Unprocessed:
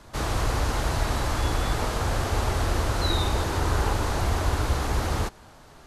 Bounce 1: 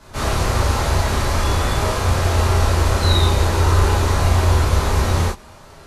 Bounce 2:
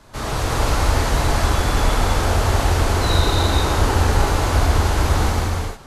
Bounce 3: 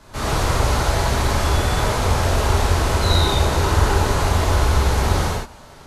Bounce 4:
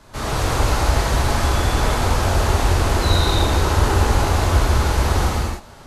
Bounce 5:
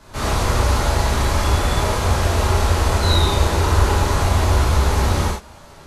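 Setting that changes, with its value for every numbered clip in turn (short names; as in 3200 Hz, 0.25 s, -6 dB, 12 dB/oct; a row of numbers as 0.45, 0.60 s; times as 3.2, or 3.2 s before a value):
non-linear reverb, gate: 80, 500, 190, 330, 130 ms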